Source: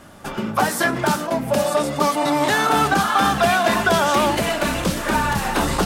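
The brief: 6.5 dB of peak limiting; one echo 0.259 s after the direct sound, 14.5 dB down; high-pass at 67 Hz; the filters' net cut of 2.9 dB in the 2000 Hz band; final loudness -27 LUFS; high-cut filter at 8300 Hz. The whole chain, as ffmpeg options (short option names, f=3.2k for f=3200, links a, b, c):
-af "highpass=67,lowpass=8.3k,equalizer=f=2k:t=o:g=-4,alimiter=limit=-13.5dB:level=0:latency=1,aecho=1:1:259:0.188,volume=-4dB"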